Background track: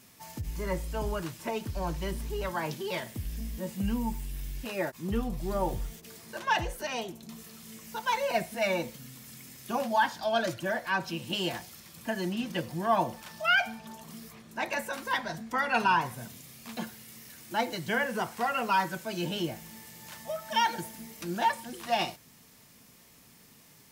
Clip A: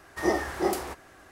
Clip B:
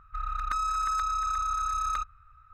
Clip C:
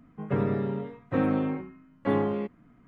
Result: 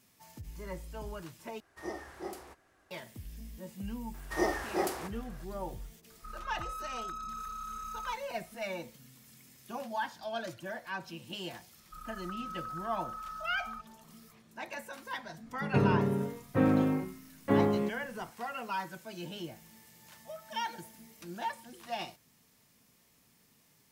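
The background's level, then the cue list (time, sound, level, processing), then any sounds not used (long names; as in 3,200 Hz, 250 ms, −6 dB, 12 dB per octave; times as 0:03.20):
background track −9.5 dB
0:01.60: overwrite with A −15 dB
0:04.14: mix in A −3.5 dB + low-shelf EQ 240 Hz −5.5 dB
0:06.10: mix in B −12 dB
0:11.78: mix in B −18 dB + high shelf with overshoot 2,000 Hz −8.5 dB, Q 3
0:15.43: mix in C −1.5 dB + low-shelf EQ 150 Hz +4 dB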